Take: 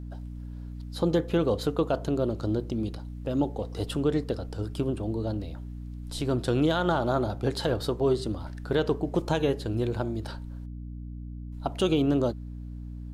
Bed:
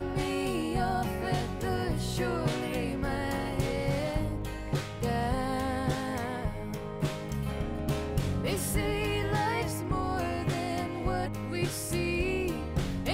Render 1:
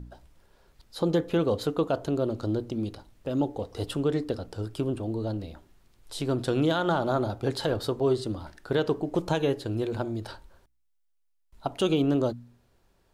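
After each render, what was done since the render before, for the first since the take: de-hum 60 Hz, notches 5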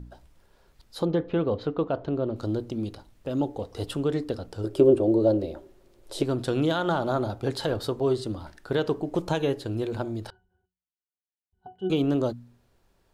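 1.05–2.36 air absorption 260 m; 4.64–6.23 small resonant body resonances 380/540 Hz, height 17 dB, ringing for 40 ms; 10.3–11.9 octave resonator F#, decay 0.2 s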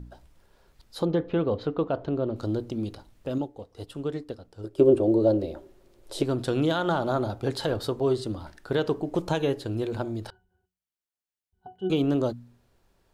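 3.38–4.91 upward expander, over -40 dBFS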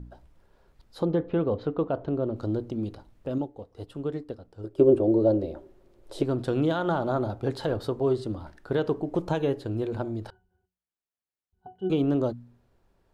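high shelf 2400 Hz -9.5 dB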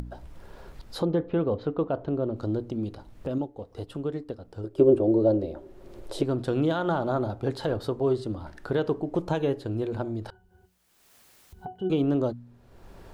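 upward compressor, threshold -29 dBFS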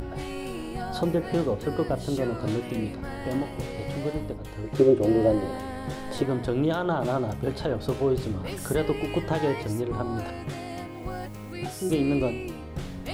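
add bed -4 dB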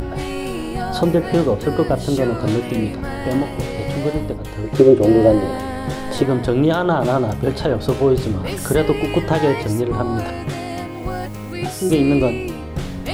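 gain +9 dB; limiter -1 dBFS, peak gain reduction 2 dB

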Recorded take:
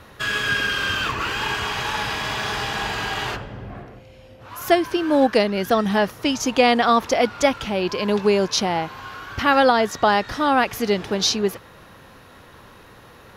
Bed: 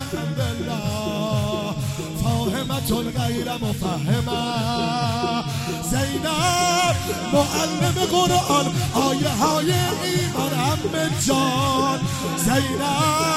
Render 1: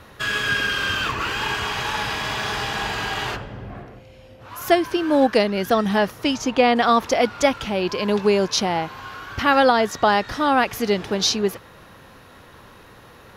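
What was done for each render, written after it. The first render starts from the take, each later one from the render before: 6.35–6.75 high shelf 7800 Hz -> 4000 Hz -11.5 dB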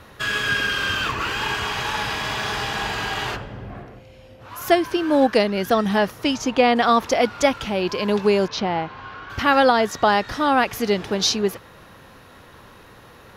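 8.48–9.3 air absorption 190 m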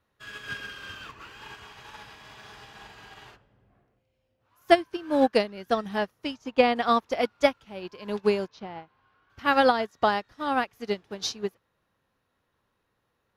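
upward expander 2.5:1, over -31 dBFS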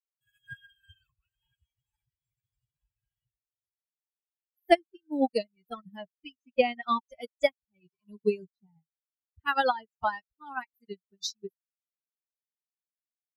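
per-bin expansion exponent 3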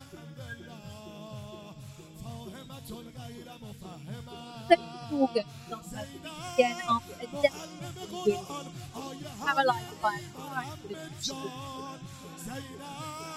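add bed -20.5 dB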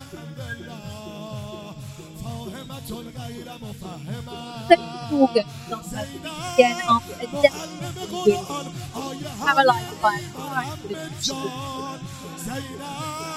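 gain +9 dB; limiter -1 dBFS, peak gain reduction 2.5 dB

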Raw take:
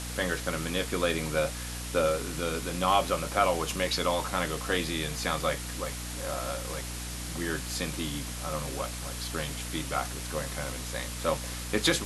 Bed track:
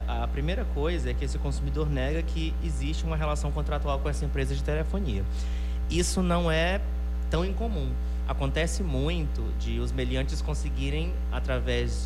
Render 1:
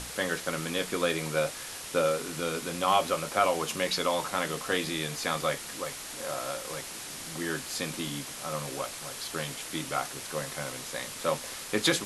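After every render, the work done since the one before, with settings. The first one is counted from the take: notches 60/120/180/240/300 Hz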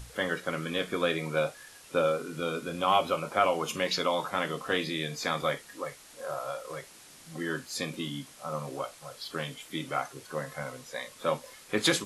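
noise print and reduce 12 dB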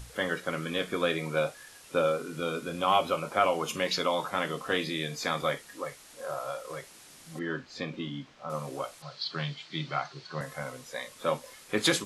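7.39–8.5 air absorption 190 m; 9.02–10.41 speaker cabinet 140–5400 Hz, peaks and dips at 150 Hz +10 dB, 270 Hz -8 dB, 490 Hz -8 dB, 4300 Hz +10 dB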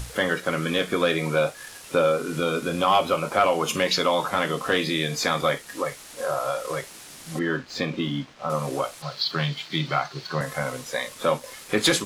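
in parallel at +2 dB: compressor, threshold -35 dBFS, peak gain reduction 15 dB; on the sum: sample leveller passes 1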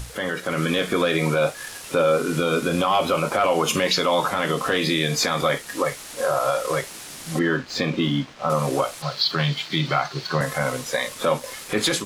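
limiter -16.5 dBFS, peak gain reduction 8 dB; AGC gain up to 5.5 dB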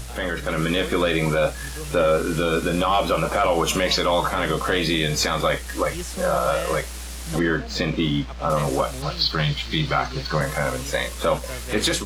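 add bed track -6.5 dB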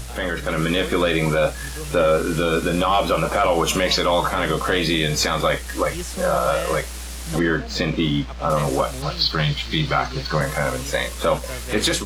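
gain +1.5 dB

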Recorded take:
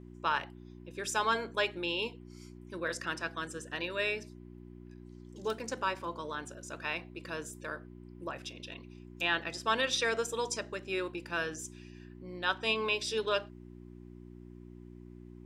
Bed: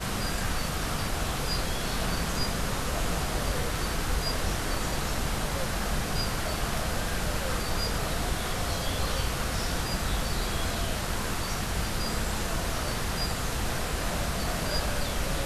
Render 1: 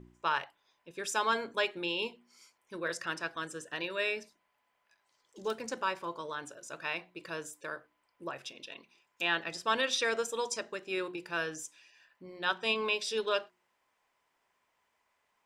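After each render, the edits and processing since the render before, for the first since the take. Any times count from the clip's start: de-hum 60 Hz, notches 6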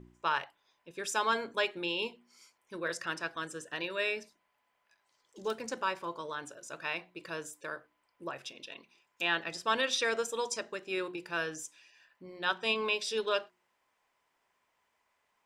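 nothing audible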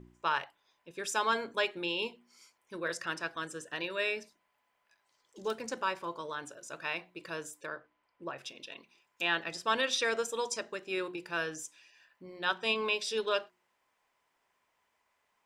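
7.66–8.38 air absorption 110 m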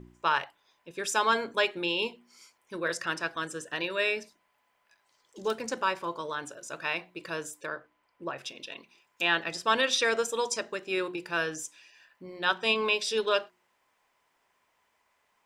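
gain +4.5 dB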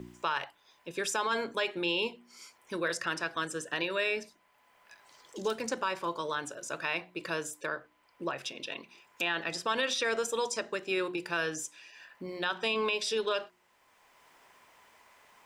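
limiter -20.5 dBFS, peak gain reduction 8 dB; three-band squash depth 40%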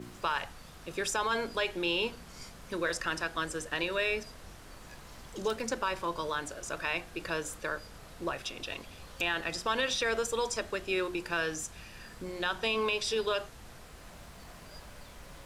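add bed -20.5 dB

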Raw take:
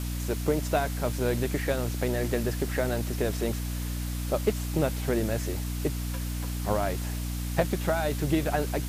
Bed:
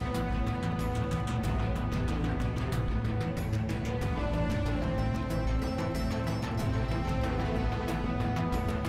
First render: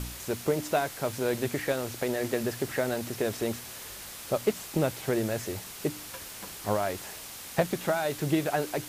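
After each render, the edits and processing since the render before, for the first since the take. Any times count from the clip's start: de-hum 60 Hz, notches 5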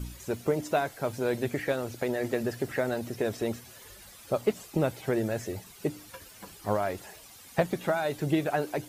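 denoiser 12 dB, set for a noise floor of -43 dBFS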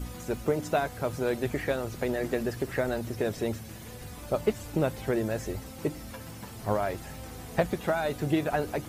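add bed -12.5 dB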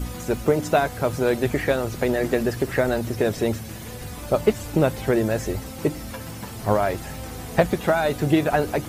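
gain +7.5 dB

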